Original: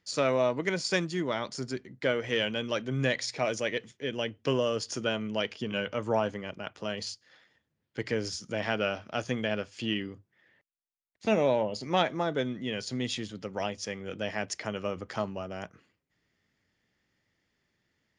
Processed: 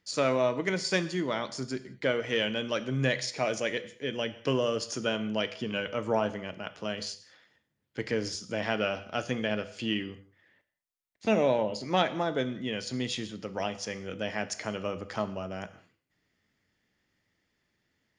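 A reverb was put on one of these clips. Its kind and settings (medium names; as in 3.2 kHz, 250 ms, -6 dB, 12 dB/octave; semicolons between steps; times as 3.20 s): gated-style reverb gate 240 ms falling, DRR 11.5 dB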